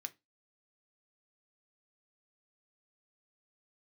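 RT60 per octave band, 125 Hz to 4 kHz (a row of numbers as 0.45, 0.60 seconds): 0.25, 0.25, 0.20, 0.20, 0.20, 0.20 seconds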